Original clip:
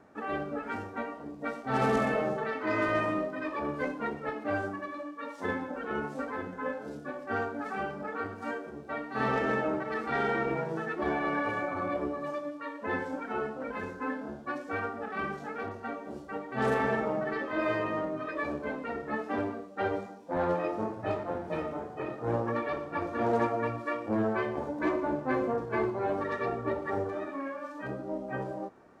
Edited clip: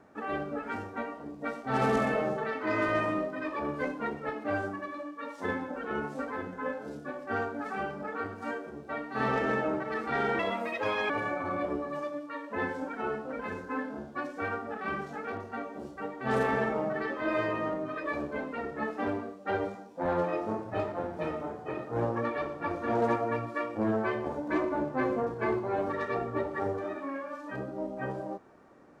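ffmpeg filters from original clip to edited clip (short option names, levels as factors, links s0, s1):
-filter_complex "[0:a]asplit=3[s0][s1][s2];[s0]atrim=end=10.394[s3];[s1]atrim=start=10.39:end=11.41,asetpts=PTS-STARTPTS,asetrate=63504,aresample=44100[s4];[s2]atrim=start=11.406[s5];[s3][s4]acrossfade=d=0.004:c1=hsin:c2=hsin[s6];[s6][s5]acrossfade=d=0.004:c1=hsin:c2=hsin"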